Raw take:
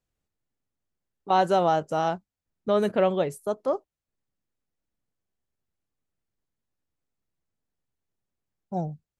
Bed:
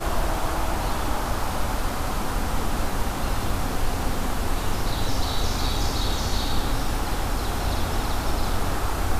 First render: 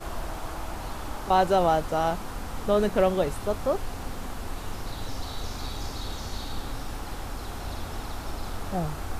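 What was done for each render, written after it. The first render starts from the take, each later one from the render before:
mix in bed −9.5 dB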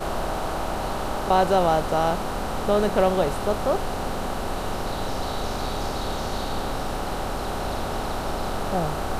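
compressor on every frequency bin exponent 0.6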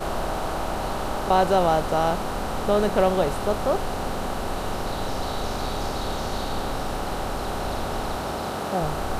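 0:08.15–0:08.80: high-pass filter 44 Hz → 160 Hz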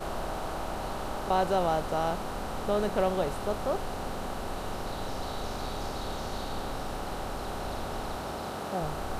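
level −7 dB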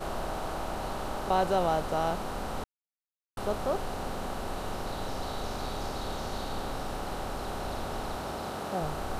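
0:02.64–0:03.37: silence

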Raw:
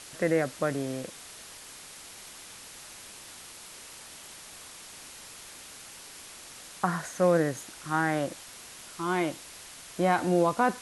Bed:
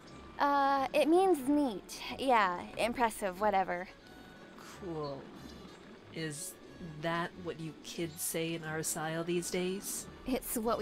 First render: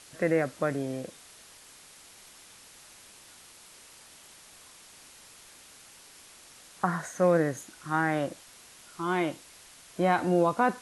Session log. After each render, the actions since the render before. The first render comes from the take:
noise reduction from a noise print 6 dB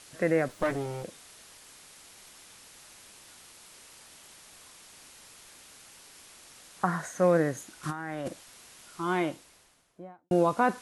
0:00.48–0:01.04: lower of the sound and its delayed copy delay 9.8 ms
0:07.83–0:08.28: compressor whose output falls as the input rises −35 dBFS
0:09.08–0:10.31: fade out and dull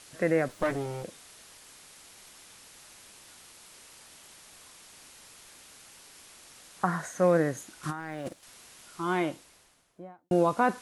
0:08.00–0:08.43: mu-law and A-law mismatch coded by A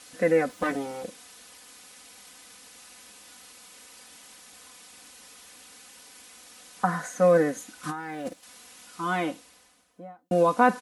high-pass filter 67 Hz
comb filter 4 ms, depth 89%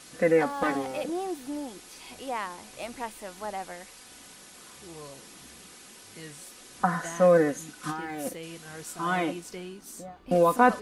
mix in bed −5.5 dB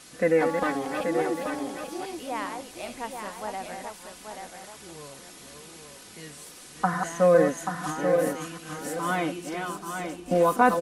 delay that plays each chunk backwards 408 ms, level −6 dB
single-tap delay 833 ms −6.5 dB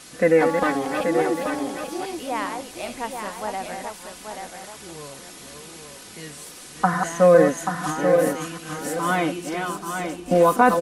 level +5 dB
brickwall limiter −3 dBFS, peak gain reduction 2.5 dB

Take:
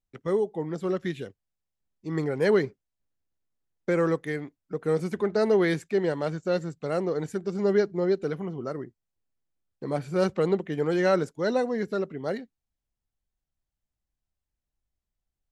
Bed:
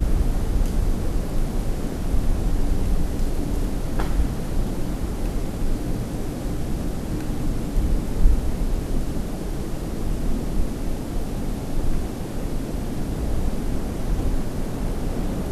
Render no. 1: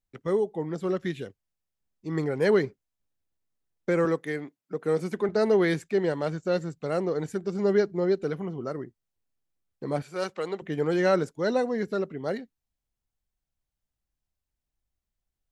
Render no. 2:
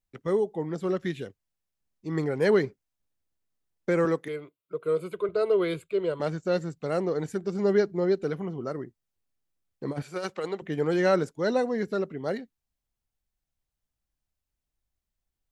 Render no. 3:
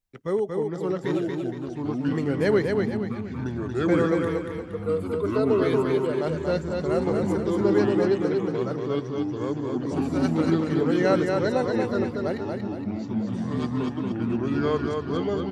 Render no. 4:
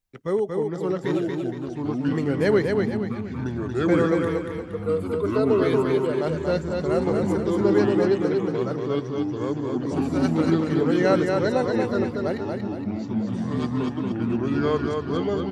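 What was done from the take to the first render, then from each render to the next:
0:04.05–0:05.29: high-pass filter 160 Hz; 0:10.02–0:10.62: high-pass filter 920 Hz 6 dB per octave
0:04.28–0:06.20: phaser with its sweep stopped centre 1,200 Hz, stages 8; 0:09.85–0:10.47: compressor whose output falls as the input rises −30 dBFS, ratio −0.5
delay with pitch and tempo change per echo 717 ms, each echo −4 semitones, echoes 3; repeating echo 233 ms, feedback 41%, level −4 dB
level +1.5 dB

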